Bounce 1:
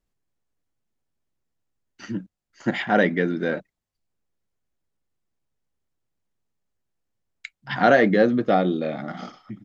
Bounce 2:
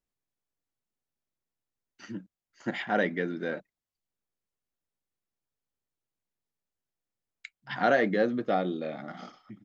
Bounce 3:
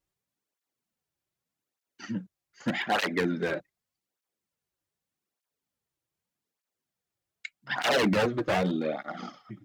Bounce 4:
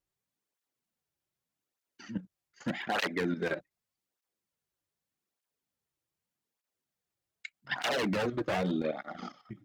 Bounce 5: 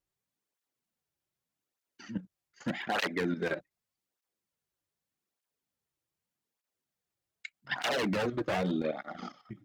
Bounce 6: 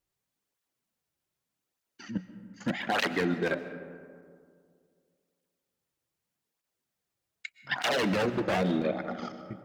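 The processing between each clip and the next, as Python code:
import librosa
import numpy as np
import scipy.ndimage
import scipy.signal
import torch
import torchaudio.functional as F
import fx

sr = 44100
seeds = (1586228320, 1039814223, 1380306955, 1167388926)

y1 = fx.low_shelf(x, sr, hz=170.0, db=-6.5)
y1 = F.gain(torch.from_numpy(y1), -7.0).numpy()
y2 = 10.0 ** (-24.0 / 20.0) * (np.abs((y1 / 10.0 ** (-24.0 / 20.0) + 3.0) % 4.0 - 2.0) - 1.0)
y2 = fx.flanger_cancel(y2, sr, hz=0.83, depth_ms=4.8)
y2 = F.gain(torch.from_numpy(y2), 7.5).numpy()
y3 = fx.level_steps(y2, sr, step_db=10)
y4 = y3
y5 = fx.rev_freeverb(y4, sr, rt60_s=2.2, hf_ratio=0.35, predelay_ms=90, drr_db=11.5)
y5 = F.gain(torch.from_numpy(y5), 3.0).numpy()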